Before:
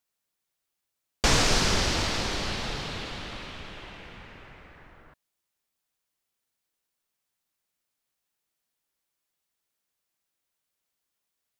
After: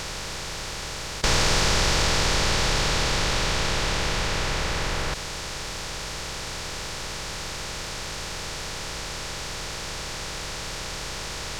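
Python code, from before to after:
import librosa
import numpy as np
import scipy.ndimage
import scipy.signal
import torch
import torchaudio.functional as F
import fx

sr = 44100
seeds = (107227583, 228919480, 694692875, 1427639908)

p1 = fx.bin_compress(x, sr, power=0.2)
p2 = 10.0 ** (-23.5 / 20.0) * np.tanh(p1 / 10.0 ** (-23.5 / 20.0))
p3 = p1 + (p2 * 10.0 ** (-9.5 / 20.0))
p4 = fx.peak_eq(p3, sr, hz=250.0, db=-9.5, octaves=0.39)
p5 = fx.notch(p4, sr, hz=710.0, q=12.0)
y = p5 * 10.0 ** (-4.0 / 20.0)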